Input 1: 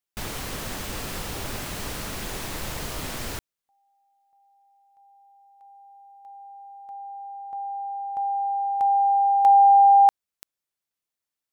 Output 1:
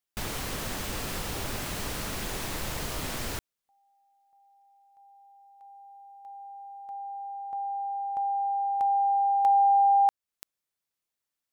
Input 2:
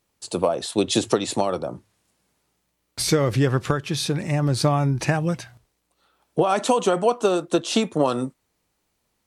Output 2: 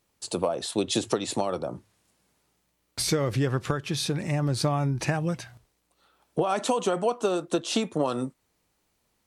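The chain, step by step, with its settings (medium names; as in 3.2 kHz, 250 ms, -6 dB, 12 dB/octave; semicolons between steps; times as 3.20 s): compression 1.5:1, threshold -31 dBFS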